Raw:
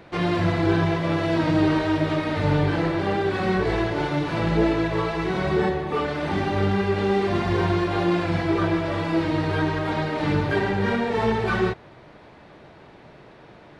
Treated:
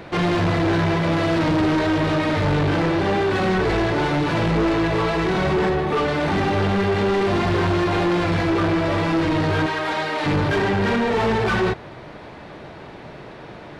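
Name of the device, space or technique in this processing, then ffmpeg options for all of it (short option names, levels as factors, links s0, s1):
saturation between pre-emphasis and de-emphasis: -filter_complex "[0:a]asettb=1/sr,asplit=3[s0][s1][s2];[s0]atrim=end=9.664[s3];[s1]atrim=start=9.66:end=10.26,asetpts=PTS-STARTPTS,afade=t=in:d=0.004:c=qsin,afade=t=out:st=0.596:d=0.004:c=qsin,highpass=f=900:p=1[s4];[s2]atrim=start=10.256[s5];[s3][s4]acrossfade=d=0.004:c1=hsin:c2=qsin[s6];[s6][s5]acrossfade=d=0.004:c1=qsin:c2=hsin,highshelf=f=4600:g=9,asoftclip=type=tanh:threshold=0.0531,highshelf=f=4600:g=-9,volume=2.82"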